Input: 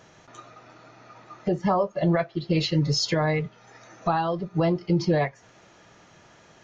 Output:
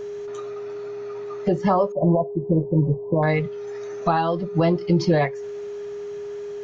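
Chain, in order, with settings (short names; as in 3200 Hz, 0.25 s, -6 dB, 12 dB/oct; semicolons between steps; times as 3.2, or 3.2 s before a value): 1.92–3.23 brick-wall FIR low-pass 1100 Hz; whine 410 Hz -33 dBFS; gain +3.5 dB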